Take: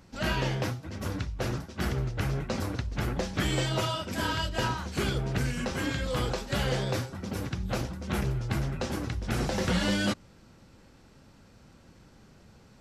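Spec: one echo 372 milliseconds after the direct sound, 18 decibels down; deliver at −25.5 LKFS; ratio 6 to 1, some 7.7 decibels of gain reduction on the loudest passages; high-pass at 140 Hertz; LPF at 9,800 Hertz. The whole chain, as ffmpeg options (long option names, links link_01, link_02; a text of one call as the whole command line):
ffmpeg -i in.wav -af "highpass=140,lowpass=9800,acompressor=threshold=-33dB:ratio=6,aecho=1:1:372:0.126,volume=12dB" out.wav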